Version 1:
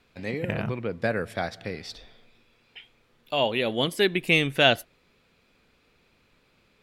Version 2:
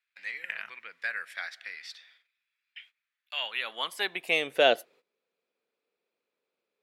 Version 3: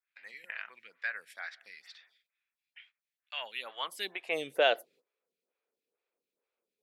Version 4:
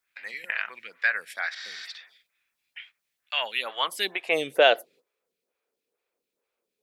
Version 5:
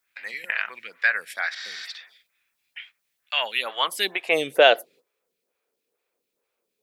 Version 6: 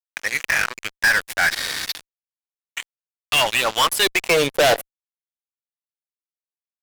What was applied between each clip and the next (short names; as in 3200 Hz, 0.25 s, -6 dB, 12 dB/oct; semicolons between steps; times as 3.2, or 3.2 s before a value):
gate -53 dBFS, range -17 dB; bell 180 Hz +6 dB 0.99 oct; high-pass sweep 1800 Hz -> 450 Hz, 3.31–4.68; gain -5.5 dB
photocell phaser 2.2 Hz; gain -2 dB
spectral repair 1.59–1.83, 640–8100 Hz before; vocal rider within 3 dB 2 s; gain +8.5 dB
high shelf 11000 Hz +3.5 dB; gain +3 dB
fuzz box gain 30 dB, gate -36 dBFS